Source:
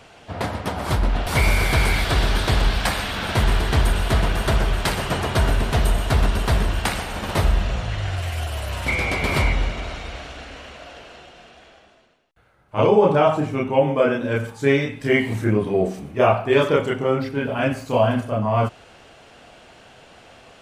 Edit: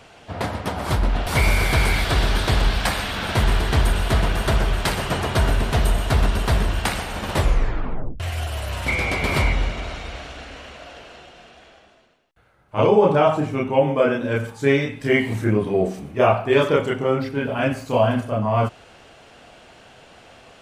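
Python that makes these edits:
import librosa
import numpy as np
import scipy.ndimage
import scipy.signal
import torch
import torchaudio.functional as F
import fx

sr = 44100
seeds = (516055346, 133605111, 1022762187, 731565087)

y = fx.edit(x, sr, fx.tape_stop(start_s=7.33, length_s=0.87), tone=tone)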